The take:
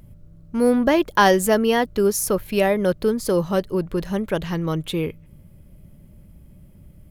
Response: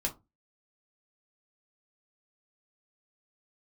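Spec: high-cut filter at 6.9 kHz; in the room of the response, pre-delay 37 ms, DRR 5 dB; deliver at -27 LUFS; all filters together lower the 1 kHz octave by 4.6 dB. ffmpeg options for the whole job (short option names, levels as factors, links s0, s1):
-filter_complex "[0:a]lowpass=6900,equalizer=f=1000:t=o:g=-6,asplit=2[s0][s1];[1:a]atrim=start_sample=2205,adelay=37[s2];[s1][s2]afir=irnorm=-1:irlink=0,volume=0.376[s3];[s0][s3]amix=inputs=2:normalize=0,volume=0.447"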